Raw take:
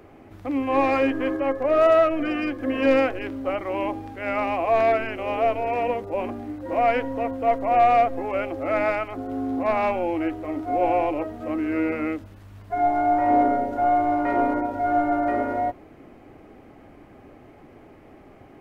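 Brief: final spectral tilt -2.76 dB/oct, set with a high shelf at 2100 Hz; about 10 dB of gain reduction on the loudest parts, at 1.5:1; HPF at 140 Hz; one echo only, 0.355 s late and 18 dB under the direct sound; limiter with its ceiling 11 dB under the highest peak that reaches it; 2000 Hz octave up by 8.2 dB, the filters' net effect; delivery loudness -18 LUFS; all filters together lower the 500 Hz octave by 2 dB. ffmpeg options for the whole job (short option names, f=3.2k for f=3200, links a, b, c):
-af "highpass=140,equalizer=f=500:t=o:g=-4,equalizer=f=2k:t=o:g=8.5,highshelf=f=2.1k:g=3,acompressor=threshold=-43dB:ratio=1.5,alimiter=level_in=4dB:limit=-24dB:level=0:latency=1,volume=-4dB,aecho=1:1:355:0.126,volume=18dB"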